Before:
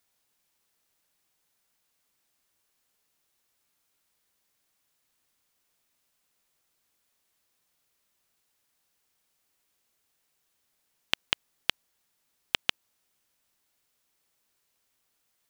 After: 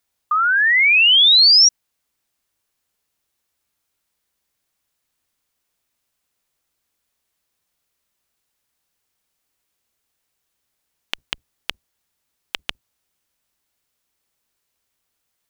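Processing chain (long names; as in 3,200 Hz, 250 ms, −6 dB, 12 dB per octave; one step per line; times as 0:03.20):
sub-octave generator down 2 octaves, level −2 dB
sound drawn into the spectrogram rise, 0:00.31–0:01.69, 1,200–5,800 Hz −10 dBFS
dynamic equaliser 1,200 Hz, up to −7 dB, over −24 dBFS, Q 0.72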